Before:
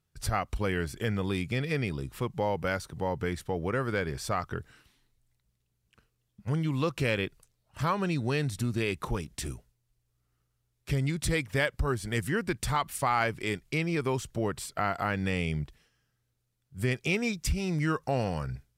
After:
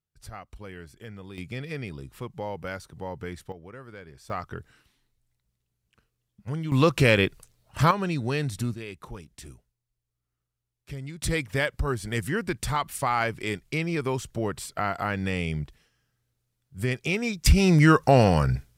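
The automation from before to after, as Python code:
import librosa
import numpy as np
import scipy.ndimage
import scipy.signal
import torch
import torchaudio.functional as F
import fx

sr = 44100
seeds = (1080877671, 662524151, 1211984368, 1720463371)

y = fx.gain(x, sr, db=fx.steps((0.0, -12.0), (1.38, -4.5), (3.52, -14.0), (4.3, -2.0), (6.72, 9.0), (7.91, 1.5), (8.74, -8.5), (11.22, 1.5), (17.46, 11.5)))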